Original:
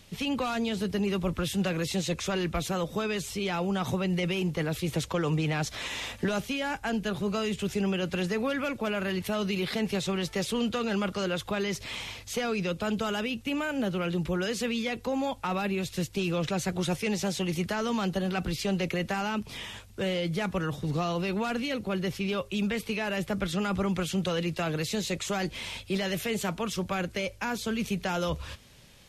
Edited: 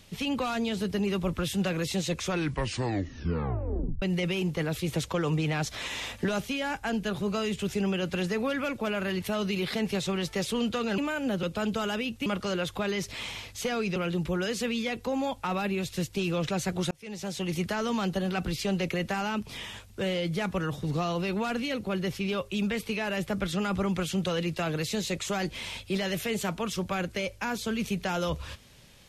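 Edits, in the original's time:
2.23 tape stop 1.79 s
10.98–12.68 swap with 13.51–13.96
16.91–17.56 fade in

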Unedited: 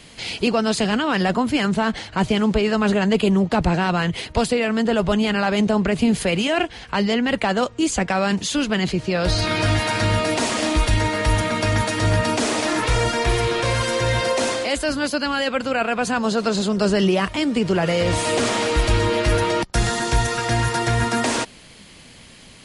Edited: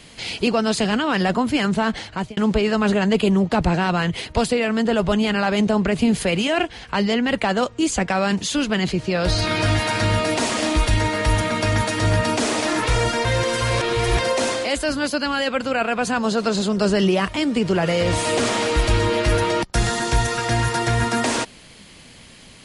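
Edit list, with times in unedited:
2.06–2.37 fade out
13.25–14.19 reverse

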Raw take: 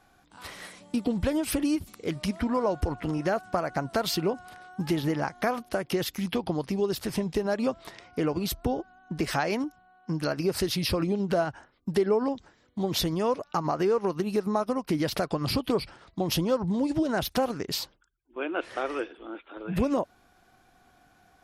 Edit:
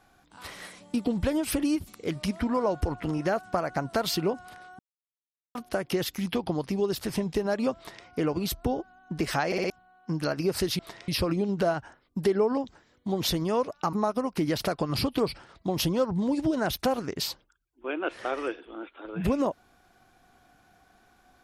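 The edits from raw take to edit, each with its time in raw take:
4.79–5.55 mute
7.77–8.06 copy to 10.79
9.46 stutter in place 0.06 s, 4 plays
13.64–14.45 cut

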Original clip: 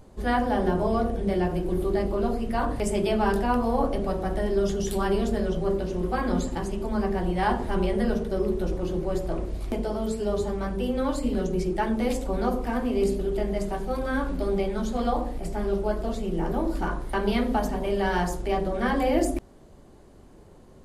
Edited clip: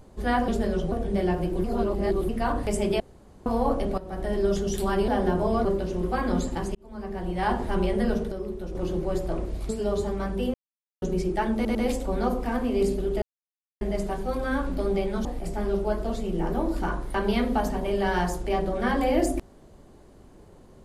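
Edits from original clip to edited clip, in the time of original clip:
0.48–1.05 swap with 5.21–5.65
1.77–2.42 reverse
3.13–3.59 room tone
4.11–4.49 fade in, from -15.5 dB
6.75–7.59 fade in linear
8.32–8.75 gain -7.5 dB
9.69–10.1 cut
10.95–11.43 mute
11.96 stutter 0.10 s, 3 plays
13.43 insert silence 0.59 s
14.87–15.24 cut

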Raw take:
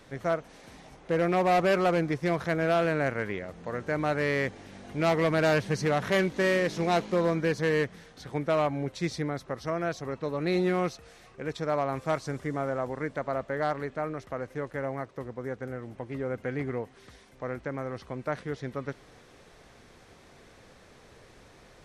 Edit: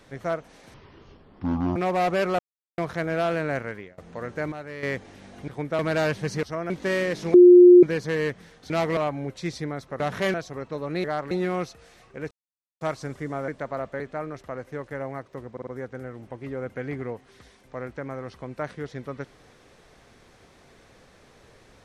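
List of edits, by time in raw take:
0.74–1.27 speed 52%
1.9–2.29 mute
3.1–3.49 fade out, to -23.5 dB
4.03–4.34 gain -10 dB
4.99–5.26 swap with 8.24–8.55
5.9–6.24 swap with 9.58–9.85
6.88–7.37 bleep 356 Hz -7 dBFS
11.55–12.05 mute
12.72–13.04 cut
13.56–13.83 move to 10.55
15.35 stutter 0.05 s, 4 plays

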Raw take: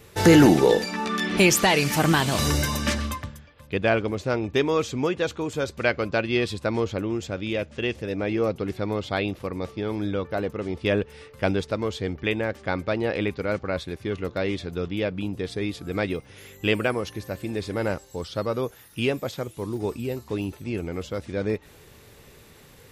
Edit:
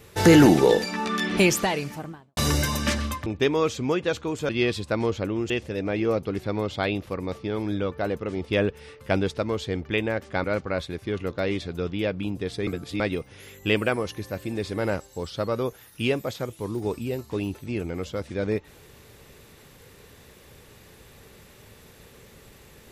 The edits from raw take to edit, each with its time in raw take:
1.2–2.37 studio fade out
3.26–4.4 cut
5.63–6.23 cut
7.24–7.83 cut
12.77–13.42 cut
15.65–15.98 reverse

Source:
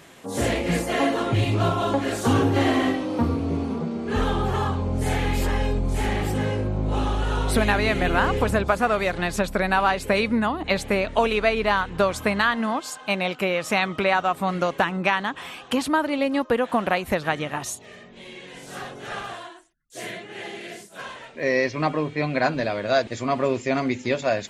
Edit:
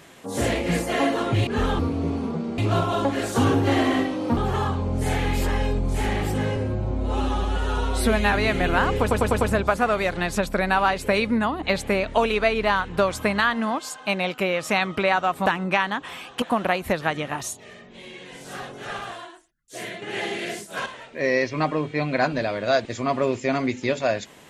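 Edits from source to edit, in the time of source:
1.47–3.26 swap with 4.05–4.37
6.56–7.74 stretch 1.5×
8.42 stutter 0.10 s, 5 plays
14.47–14.79 cut
15.75–16.64 cut
20.24–21.08 gain +7 dB

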